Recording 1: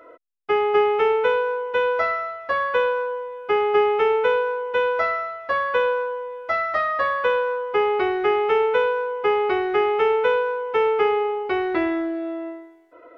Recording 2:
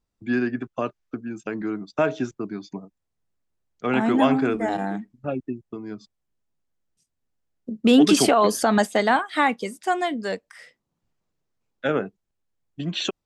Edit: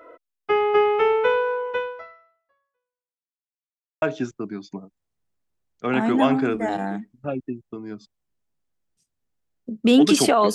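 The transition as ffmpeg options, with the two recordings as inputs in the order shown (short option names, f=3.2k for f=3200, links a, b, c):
-filter_complex "[0:a]apad=whole_dur=10.54,atrim=end=10.54,asplit=2[a][b];[a]atrim=end=3.47,asetpts=PTS-STARTPTS,afade=t=out:st=1.7:d=1.77:c=exp[c];[b]atrim=start=3.47:end=4.02,asetpts=PTS-STARTPTS,volume=0[d];[1:a]atrim=start=2.02:end=8.54,asetpts=PTS-STARTPTS,afade=t=in:d=0.004:c=hsin[e];[c][d][e]concat=n=3:v=0:a=1"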